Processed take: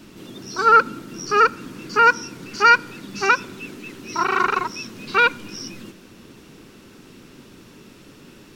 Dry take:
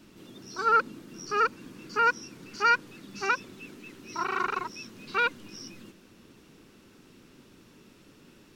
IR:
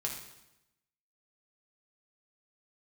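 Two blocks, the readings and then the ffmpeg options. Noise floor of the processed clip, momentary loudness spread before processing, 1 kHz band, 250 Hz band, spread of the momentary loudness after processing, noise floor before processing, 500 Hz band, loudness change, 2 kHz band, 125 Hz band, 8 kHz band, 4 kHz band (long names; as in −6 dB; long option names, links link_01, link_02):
−47 dBFS, 21 LU, +9.5 dB, +9.5 dB, 20 LU, −57 dBFS, +10.0 dB, +9.5 dB, +9.5 dB, +10.0 dB, can't be measured, +9.5 dB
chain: -filter_complex "[0:a]asplit=2[link_01][link_02];[1:a]atrim=start_sample=2205[link_03];[link_02][link_03]afir=irnorm=-1:irlink=0,volume=-20dB[link_04];[link_01][link_04]amix=inputs=2:normalize=0,volume=9dB"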